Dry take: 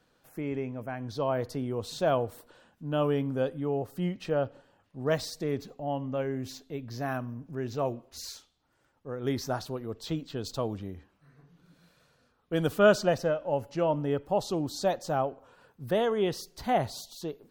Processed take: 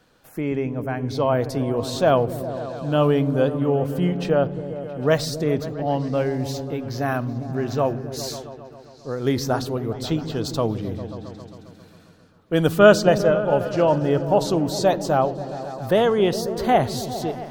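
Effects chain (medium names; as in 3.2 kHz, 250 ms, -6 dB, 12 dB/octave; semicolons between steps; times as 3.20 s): delay with an opening low-pass 134 ms, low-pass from 200 Hz, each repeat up 1 oct, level -6 dB; trim +8.5 dB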